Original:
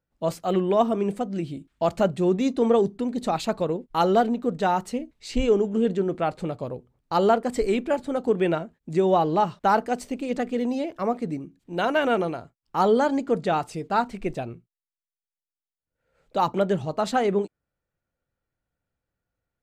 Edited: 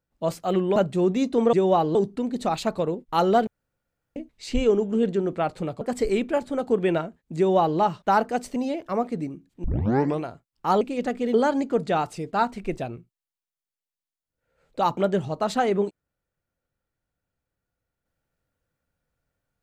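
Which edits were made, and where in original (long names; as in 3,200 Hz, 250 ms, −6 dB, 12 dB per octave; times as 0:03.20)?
0:00.76–0:02.00: remove
0:04.29–0:04.98: fill with room tone
0:06.63–0:07.38: remove
0:08.94–0:09.36: duplicate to 0:02.77
0:10.13–0:10.66: move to 0:12.91
0:11.74: tape start 0.57 s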